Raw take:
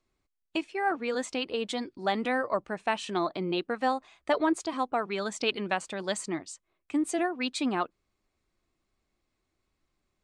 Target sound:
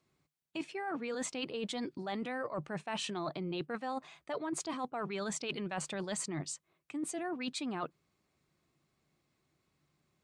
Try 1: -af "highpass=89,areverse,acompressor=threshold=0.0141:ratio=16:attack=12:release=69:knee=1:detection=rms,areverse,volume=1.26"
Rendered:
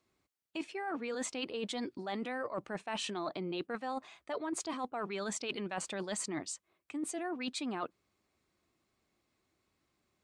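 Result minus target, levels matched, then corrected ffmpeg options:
125 Hz band -4.5 dB
-af "highpass=89,equalizer=f=150:t=o:w=0.33:g=14.5,areverse,acompressor=threshold=0.0141:ratio=16:attack=12:release=69:knee=1:detection=rms,areverse,volume=1.26"

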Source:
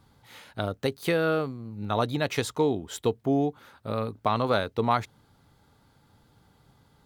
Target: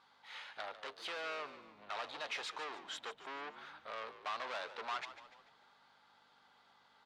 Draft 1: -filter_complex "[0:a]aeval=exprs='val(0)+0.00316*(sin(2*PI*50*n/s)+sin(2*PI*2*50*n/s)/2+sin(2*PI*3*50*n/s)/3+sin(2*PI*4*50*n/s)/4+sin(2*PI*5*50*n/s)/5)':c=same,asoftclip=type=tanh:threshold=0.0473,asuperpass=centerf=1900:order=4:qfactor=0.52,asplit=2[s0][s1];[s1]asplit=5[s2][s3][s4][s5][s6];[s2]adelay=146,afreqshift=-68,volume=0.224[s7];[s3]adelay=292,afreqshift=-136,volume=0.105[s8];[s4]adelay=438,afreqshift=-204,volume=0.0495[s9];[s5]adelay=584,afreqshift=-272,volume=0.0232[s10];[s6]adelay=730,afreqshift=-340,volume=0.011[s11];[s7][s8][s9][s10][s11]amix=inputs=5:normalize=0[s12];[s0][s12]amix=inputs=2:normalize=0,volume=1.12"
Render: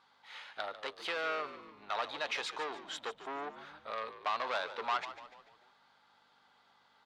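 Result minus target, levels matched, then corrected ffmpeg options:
saturation: distortion -5 dB
-filter_complex "[0:a]aeval=exprs='val(0)+0.00316*(sin(2*PI*50*n/s)+sin(2*PI*2*50*n/s)/2+sin(2*PI*3*50*n/s)/3+sin(2*PI*4*50*n/s)/4+sin(2*PI*5*50*n/s)/5)':c=same,asoftclip=type=tanh:threshold=0.0168,asuperpass=centerf=1900:order=4:qfactor=0.52,asplit=2[s0][s1];[s1]asplit=5[s2][s3][s4][s5][s6];[s2]adelay=146,afreqshift=-68,volume=0.224[s7];[s3]adelay=292,afreqshift=-136,volume=0.105[s8];[s4]adelay=438,afreqshift=-204,volume=0.0495[s9];[s5]adelay=584,afreqshift=-272,volume=0.0232[s10];[s6]adelay=730,afreqshift=-340,volume=0.011[s11];[s7][s8][s9][s10][s11]amix=inputs=5:normalize=0[s12];[s0][s12]amix=inputs=2:normalize=0,volume=1.12"

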